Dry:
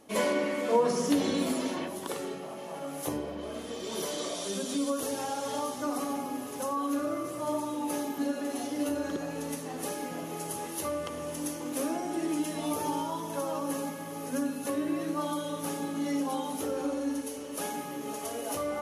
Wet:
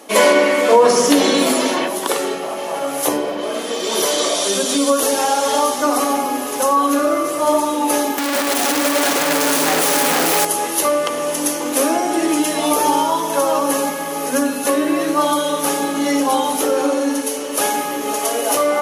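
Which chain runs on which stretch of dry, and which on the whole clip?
0:08.18–0:10.45: sign of each sample alone + single-tap delay 462 ms −3.5 dB
whole clip: Bessel high-pass filter 420 Hz, order 2; boost into a limiter +19 dB; level −1 dB

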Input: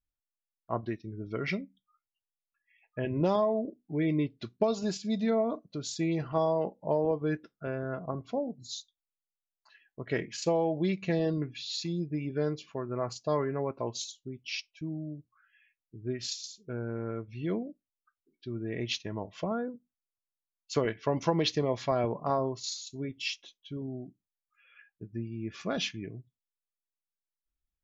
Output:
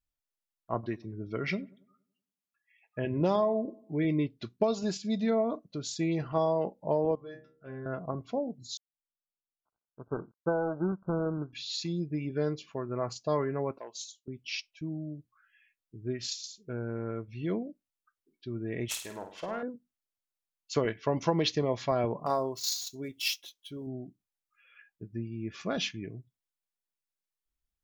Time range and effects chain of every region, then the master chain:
0:00.74–0:04.05: high-pass filter 58 Hz + feedback echo with a low-pass in the loop 94 ms, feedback 48%, low-pass 1,500 Hz, level −22 dB
0:07.15–0:07.86: stiff-string resonator 64 Hz, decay 0.51 s, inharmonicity 0.002 + hum removal 78.36 Hz, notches 9
0:08.77–0:11.53: gap after every zero crossing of 0.29 ms + linear-phase brick-wall low-pass 1,600 Hz + expander for the loud parts, over −44 dBFS
0:13.78–0:14.28: high-pass filter 640 Hz + parametric band 1,700 Hz −9 dB 2.9 octaves + saturating transformer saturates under 650 Hz
0:18.88–0:19.63: phase distortion by the signal itself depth 0.12 ms + parametric band 130 Hz −13 dB 2.6 octaves + flutter between parallel walls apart 8.9 metres, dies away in 0.46 s
0:22.26–0:23.87: running median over 5 samples + bass and treble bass −7 dB, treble +11 dB
whole clip: no processing

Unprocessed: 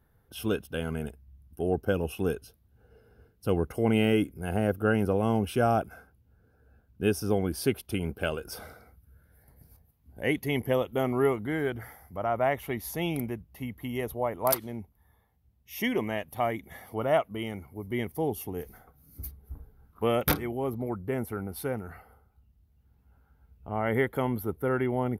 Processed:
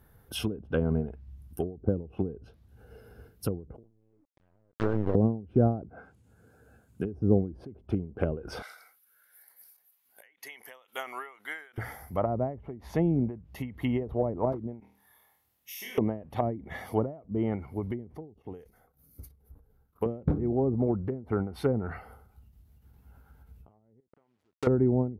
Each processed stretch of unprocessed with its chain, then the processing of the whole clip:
0:03.83–0:05.15: linear-prediction vocoder at 8 kHz pitch kept + downward compressor 5 to 1, threshold −28 dBFS + bit-depth reduction 6 bits, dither none
0:05.90–0:07.05: high-pass filter 110 Hz + bad sample-rate conversion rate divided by 2×, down none, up hold
0:08.62–0:11.78: high-pass filter 1,500 Hz + dynamic equaliser 3,200 Hz, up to −7 dB, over −49 dBFS, Q 1.1
0:14.80–0:15.98: high-pass filter 1,400 Hz 6 dB per octave + downward compressor, threshold −49 dBFS + flutter between parallel walls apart 4.3 metres, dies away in 0.54 s
0:18.34–0:20.06: parametric band 500 Hz +5.5 dB 0.45 octaves + output level in coarse steps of 10 dB + expander for the loud parts, over −50 dBFS
0:24.00–0:24.67: hold until the input has moved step −33.5 dBFS + high-pass filter 230 Hz 6 dB per octave + downward compressor 4 to 1, threshold −35 dBFS
whole clip: treble cut that deepens with the level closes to 360 Hz, closed at −26.5 dBFS; high-shelf EQ 9,200 Hz +6.5 dB; every ending faded ahead of time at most 130 dB per second; level +7 dB

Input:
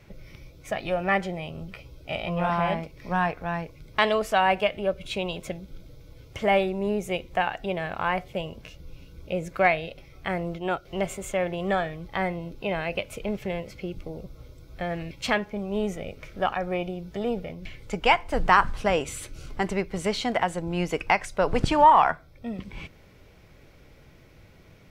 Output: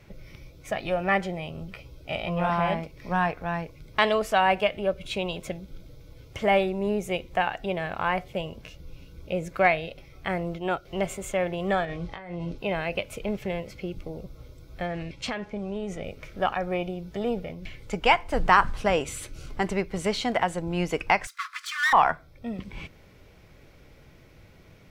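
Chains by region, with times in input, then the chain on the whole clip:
0:11.85–0:12.58: low-pass filter 7,500 Hz + compressor whose output falls as the input rises −36 dBFS + double-tracking delay 23 ms −8 dB
0:14.86–0:16.04: low-pass filter 8,800 Hz + downward compressor, threshold −27 dBFS
0:21.27–0:21.93: lower of the sound and its delayed copy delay 2.9 ms + Chebyshev high-pass filter 1,100 Hz, order 8 + notch filter 2,800 Hz, Q 16
whole clip: no processing

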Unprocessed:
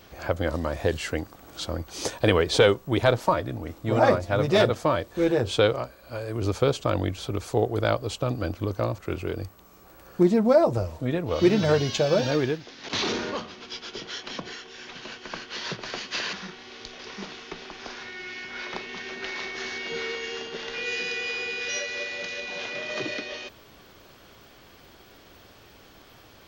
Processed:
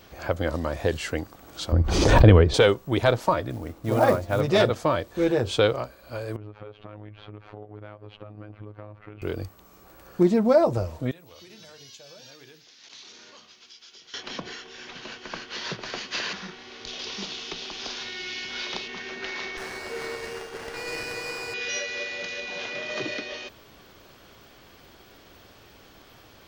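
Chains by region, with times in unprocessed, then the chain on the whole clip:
0:01.72–0:02.54: RIAA equalisation playback + background raised ahead of every attack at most 36 dB per second
0:03.50–0:04.41: high-shelf EQ 2,900 Hz −7 dB + log-companded quantiser 6 bits
0:06.36–0:09.22: low-pass filter 2,600 Hz 24 dB per octave + downward compressor 8 to 1, threshold −36 dBFS + phases set to zero 105 Hz
0:11.11–0:14.14: first-order pre-emphasis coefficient 0.9 + downward compressor 4 to 1, threshold −45 dBFS + mains-hum notches 50/100/150/200/250/300/350/400/450 Hz
0:16.87–0:18.88: high shelf with overshoot 2,500 Hz +7 dB, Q 1.5 + multiband upward and downward compressor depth 40%
0:19.57–0:21.54: high-pass filter 310 Hz + windowed peak hold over 9 samples
whole clip: no processing

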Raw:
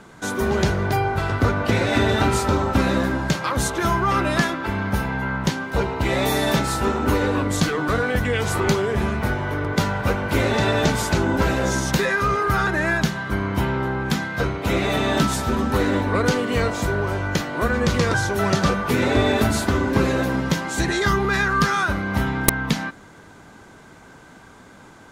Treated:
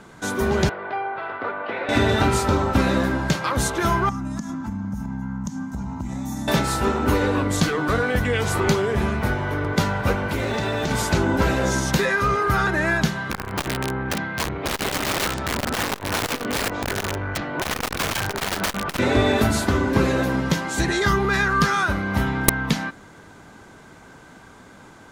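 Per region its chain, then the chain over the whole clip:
0:00.69–0:01.89: band-pass filter 580–5,600 Hz + high-frequency loss of the air 470 metres
0:04.09–0:06.48: drawn EQ curve 150 Hz 0 dB, 240 Hz +9 dB, 420 Hz −27 dB, 850 Hz −6 dB, 2,600 Hz −20 dB, 4,400 Hz −15 dB, 6,500 Hz +2 dB, 9,600 Hz −8 dB + downward compressor 10 to 1, threshold −24 dBFS
0:10.29–0:10.91: downward compressor 5 to 1, threshold −20 dBFS + log-companded quantiser 8 bits
0:13.31–0:18.99: low-pass filter 2,900 Hz + wrap-around overflow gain 16 dB + saturating transformer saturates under 240 Hz
whole clip: no processing

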